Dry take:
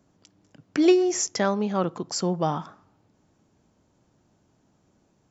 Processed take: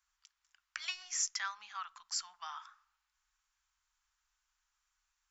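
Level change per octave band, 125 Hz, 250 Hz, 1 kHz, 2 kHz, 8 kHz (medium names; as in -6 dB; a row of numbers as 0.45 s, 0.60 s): under -40 dB, under -40 dB, -14.5 dB, -6.5 dB, no reading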